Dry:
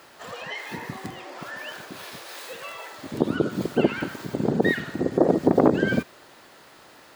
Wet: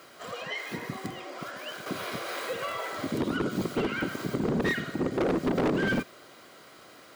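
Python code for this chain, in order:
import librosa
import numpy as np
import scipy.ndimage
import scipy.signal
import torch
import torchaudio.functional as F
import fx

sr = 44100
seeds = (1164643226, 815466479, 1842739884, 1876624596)

y = fx.notch_comb(x, sr, f0_hz=880.0)
y = np.clip(10.0 ** (23.0 / 20.0) * y, -1.0, 1.0) / 10.0 ** (23.0 / 20.0)
y = fx.band_squash(y, sr, depth_pct=70, at=(1.86, 4.38))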